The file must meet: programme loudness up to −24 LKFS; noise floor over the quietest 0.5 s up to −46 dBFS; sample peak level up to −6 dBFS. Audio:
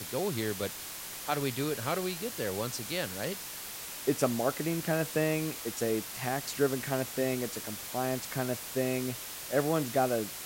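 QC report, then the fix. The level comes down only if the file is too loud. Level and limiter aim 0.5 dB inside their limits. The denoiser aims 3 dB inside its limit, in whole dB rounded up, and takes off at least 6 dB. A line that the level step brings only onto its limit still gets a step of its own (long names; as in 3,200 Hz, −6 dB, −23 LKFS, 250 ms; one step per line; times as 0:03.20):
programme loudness −32.5 LKFS: in spec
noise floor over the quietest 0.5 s −42 dBFS: out of spec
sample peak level −14.5 dBFS: in spec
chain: broadband denoise 7 dB, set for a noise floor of −42 dBFS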